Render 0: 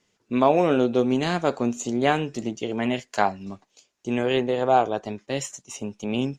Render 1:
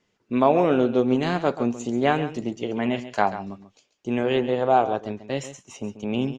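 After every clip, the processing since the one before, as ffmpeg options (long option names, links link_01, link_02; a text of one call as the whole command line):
ffmpeg -i in.wav -af "aemphasis=mode=reproduction:type=50fm,aecho=1:1:137:0.224" out.wav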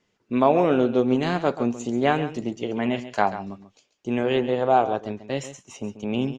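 ffmpeg -i in.wav -af anull out.wav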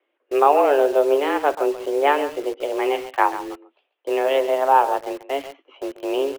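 ffmpeg -i in.wav -filter_complex "[0:a]highpass=frequency=160:width_type=q:width=0.5412,highpass=frequency=160:width_type=q:width=1.307,lowpass=frequency=3000:width_type=q:width=0.5176,lowpass=frequency=3000:width_type=q:width=0.7071,lowpass=frequency=3000:width_type=q:width=1.932,afreqshift=140,asplit=2[link_01][link_02];[link_02]acrusher=bits=5:mix=0:aa=0.000001,volume=-4dB[link_03];[link_01][link_03]amix=inputs=2:normalize=0,volume=-1dB" out.wav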